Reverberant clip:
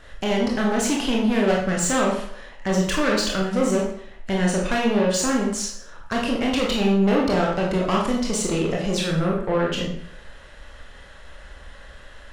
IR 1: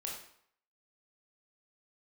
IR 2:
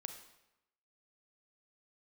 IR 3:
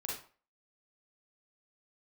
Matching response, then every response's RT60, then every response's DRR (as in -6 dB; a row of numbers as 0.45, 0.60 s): 1; 0.65, 0.90, 0.40 s; -2.5, 6.0, -4.0 dB